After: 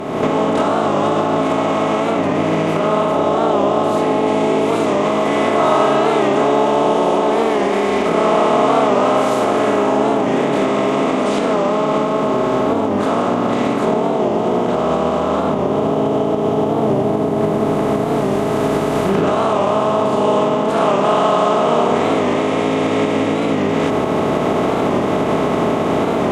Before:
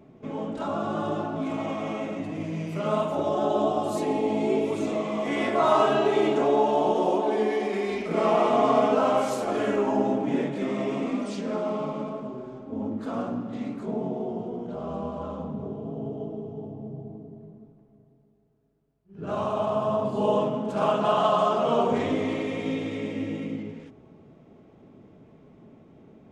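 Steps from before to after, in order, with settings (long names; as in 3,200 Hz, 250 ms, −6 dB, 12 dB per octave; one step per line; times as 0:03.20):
compressor on every frequency bin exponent 0.4
camcorder AGC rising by 43 dB per second
0:02.12–0:04.27: high-shelf EQ 4,800 Hz −5.5 dB
wow of a warped record 45 rpm, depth 100 cents
level +2.5 dB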